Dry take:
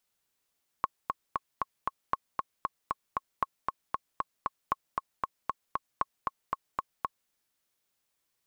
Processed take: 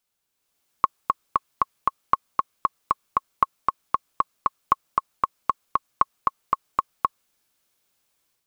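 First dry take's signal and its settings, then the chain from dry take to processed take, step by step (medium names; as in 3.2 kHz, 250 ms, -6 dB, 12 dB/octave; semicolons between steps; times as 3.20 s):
metronome 232 bpm, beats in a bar 5, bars 5, 1.09 kHz, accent 3 dB -13 dBFS
band-stop 1.9 kHz, Q 17; dynamic bell 1.2 kHz, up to +7 dB, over -48 dBFS, Q 4.6; level rider gain up to 8 dB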